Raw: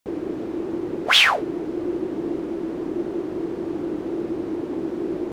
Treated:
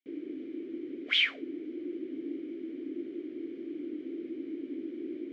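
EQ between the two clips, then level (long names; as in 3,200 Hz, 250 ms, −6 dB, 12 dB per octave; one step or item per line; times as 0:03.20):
formant filter i
low-pass filter 8,300 Hz
low shelf with overshoot 290 Hz −6.5 dB, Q 1.5
0.0 dB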